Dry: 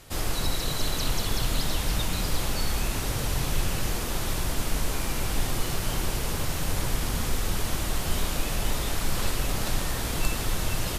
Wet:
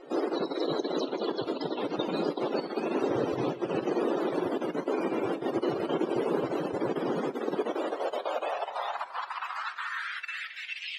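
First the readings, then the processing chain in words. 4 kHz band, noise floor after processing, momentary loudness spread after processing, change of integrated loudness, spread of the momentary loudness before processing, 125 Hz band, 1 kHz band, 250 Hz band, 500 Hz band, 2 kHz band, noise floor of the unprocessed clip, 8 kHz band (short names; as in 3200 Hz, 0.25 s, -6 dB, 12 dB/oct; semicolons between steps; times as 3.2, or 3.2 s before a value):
-9.5 dB, -44 dBFS, 5 LU, -2.0 dB, 2 LU, -14.5 dB, +1.5 dB, +4.0 dB, +7.5 dB, -3.0 dB, -30 dBFS, under -25 dB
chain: negative-ratio compressor -26 dBFS, ratio -0.5; high-pass sweep 380 Hz -> 2400 Hz, 7.49–10.84; loudest bins only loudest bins 64; RIAA curve playback; two-slope reverb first 0.38 s, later 4.5 s, from -18 dB, DRR 15 dB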